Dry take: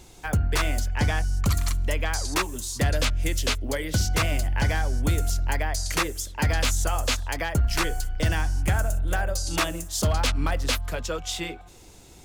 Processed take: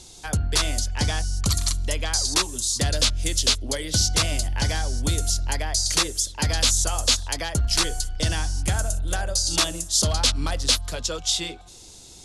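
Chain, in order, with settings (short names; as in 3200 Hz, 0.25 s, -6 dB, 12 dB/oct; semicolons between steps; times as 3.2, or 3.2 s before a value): elliptic low-pass 11000 Hz, stop band 70 dB; resonant high shelf 3000 Hz +8 dB, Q 1.5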